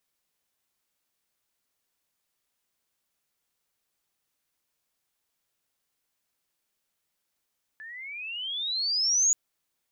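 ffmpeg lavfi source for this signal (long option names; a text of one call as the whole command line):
ffmpeg -f lavfi -i "aevalsrc='pow(10,(-18.5+21.5*(t/1.53-1))/20)*sin(2*PI*1720*1.53/(24*log(2)/12)*(exp(24*log(2)/12*t/1.53)-1))':duration=1.53:sample_rate=44100" out.wav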